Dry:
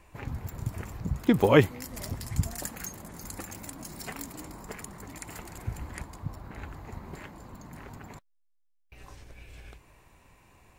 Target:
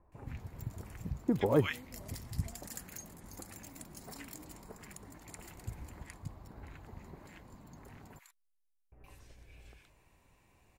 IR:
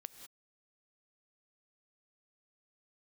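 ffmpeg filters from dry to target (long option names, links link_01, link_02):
-filter_complex "[0:a]asettb=1/sr,asplit=3[link_01][link_02][link_03];[link_01]atrim=end=7.984[link_04];[link_02]atrim=start=7.98:end=9.07,asetpts=PTS-STARTPTS,afade=type=in:duration=0.004:curve=qsin,afade=type=out:start_time=1.086:duration=0.004:curve=qsin,equalizer=frequency=11000:width_type=o:width=0.8:gain=10.5[link_05];[link_03]atrim=start=9.066[link_06];[link_04][link_05]acrossfade=duration=0.004:curve1=hsin:curve2=qsin[link_07];[link_07][link_06]acrossfade=duration=0.004:curve1=qsin:curve2=hsin,acrossover=split=1300[link_08][link_09];[link_09]adelay=120[link_10];[link_08][link_10]amix=inputs=2:normalize=0,volume=-8dB"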